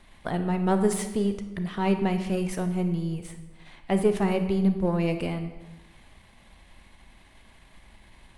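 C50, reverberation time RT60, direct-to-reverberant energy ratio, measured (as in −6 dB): 9.0 dB, 1.1 s, 7.5 dB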